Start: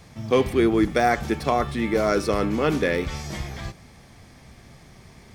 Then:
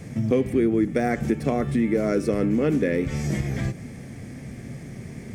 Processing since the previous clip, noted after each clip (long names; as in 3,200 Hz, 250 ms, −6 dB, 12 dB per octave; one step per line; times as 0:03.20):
octave-band graphic EQ 125/250/500/1,000/2,000/4,000/8,000 Hz +10/+11/+7/−7/+7/−7/+6 dB
downward compressor 3 to 1, threshold −24 dBFS, peak gain reduction 14.5 dB
level +1.5 dB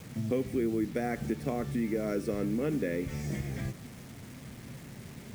bit reduction 7 bits
level −9 dB